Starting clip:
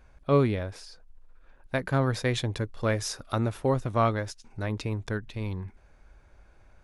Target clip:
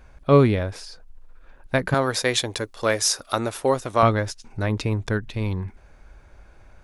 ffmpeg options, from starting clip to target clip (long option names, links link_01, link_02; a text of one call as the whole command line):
ffmpeg -i in.wav -filter_complex "[0:a]asettb=1/sr,asplit=3[link_01][link_02][link_03];[link_01]atrim=end=1.944[link_04];[link_02]atrim=start=1.94:end=4.03,asetpts=PTS-STARTPTS,afade=type=in:duration=0.004:curve=qsin,afade=type=out:start_time=2.086:duration=0.004:curve=qsin,bass=frequency=250:gain=-13,treble=frequency=4000:gain=7[link_05];[link_03]atrim=start=4.026[link_06];[link_04][link_05]acrossfade=duration=0.004:curve1=hsin:curve2=qsin[link_07];[link_07][link_06]acrossfade=duration=0.004:curve1=qsin:curve2=hsin,volume=7dB" out.wav